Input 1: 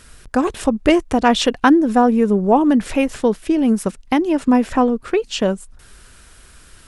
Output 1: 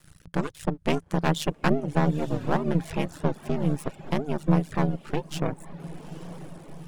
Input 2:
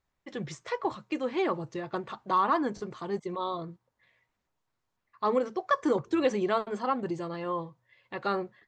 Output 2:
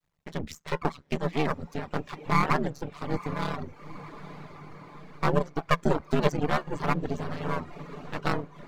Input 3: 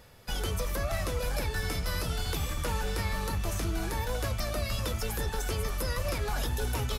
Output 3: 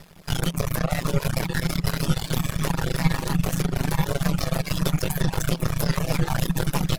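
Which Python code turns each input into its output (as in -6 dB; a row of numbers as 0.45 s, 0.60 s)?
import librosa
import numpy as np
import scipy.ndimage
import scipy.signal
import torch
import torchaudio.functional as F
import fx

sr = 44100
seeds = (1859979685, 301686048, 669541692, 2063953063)

y = x * np.sin(2.0 * np.pi * 75.0 * np.arange(len(x)) / sr)
y = np.maximum(y, 0.0)
y = fx.echo_diffused(y, sr, ms=890, feedback_pct=63, wet_db=-14.5)
y = fx.dereverb_blind(y, sr, rt60_s=0.59)
y = fx.peak_eq(y, sr, hz=170.0, db=10.0, octaves=0.25)
y = y * 10.0 ** (-6 / 20.0) / np.max(np.abs(y))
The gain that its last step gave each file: -4.5 dB, +8.0 dB, +12.5 dB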